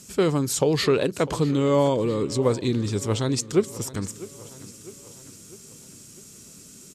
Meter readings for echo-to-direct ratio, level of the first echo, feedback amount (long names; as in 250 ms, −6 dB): −16.5 dB, −18.0 dB, 55%